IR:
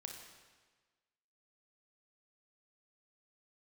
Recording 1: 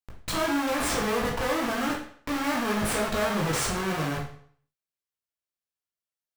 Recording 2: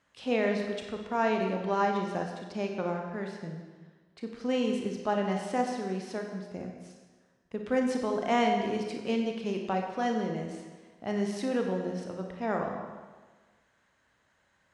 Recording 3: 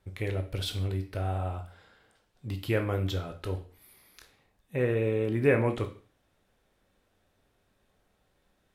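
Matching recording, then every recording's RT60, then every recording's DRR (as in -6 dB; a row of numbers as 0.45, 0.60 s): 2; 0.55, 1.4, 0.40 s; -2.5, 2.0, 5.5 dB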